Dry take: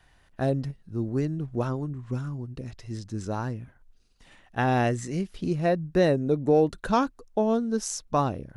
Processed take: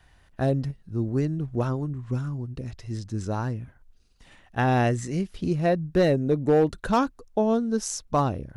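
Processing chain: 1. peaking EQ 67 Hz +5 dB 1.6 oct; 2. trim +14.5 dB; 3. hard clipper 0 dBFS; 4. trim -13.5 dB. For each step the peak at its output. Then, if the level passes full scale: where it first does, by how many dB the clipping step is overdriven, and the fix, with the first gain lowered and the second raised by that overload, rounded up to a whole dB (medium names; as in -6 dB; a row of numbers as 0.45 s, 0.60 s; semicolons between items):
-9.5 dBFS, +5.0 dBFS, 0.0 dBFS, -13.5 dBFS; step 2, 5.0 dB; step 2 +9.5 dB, step 4 -8.5 dB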